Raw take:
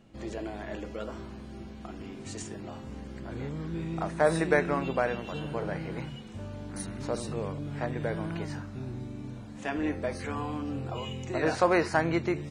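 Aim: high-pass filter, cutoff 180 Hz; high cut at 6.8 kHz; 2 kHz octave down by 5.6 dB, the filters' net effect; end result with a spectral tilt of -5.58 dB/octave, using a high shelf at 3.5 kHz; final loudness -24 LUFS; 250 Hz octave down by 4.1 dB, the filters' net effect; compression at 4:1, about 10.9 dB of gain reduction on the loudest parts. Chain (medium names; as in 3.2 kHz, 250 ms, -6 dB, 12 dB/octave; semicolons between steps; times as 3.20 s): high-pass 180 Hz; low-pass 6.8 kHz; peaking EQ 250 Hz -4.5 dB; peaking EQ 2 kHz -5.5 dB; treble shelf 3.5 kHz -6.5 dB; compression 4:1, threshold -33 dBFS; trim +16.5 dB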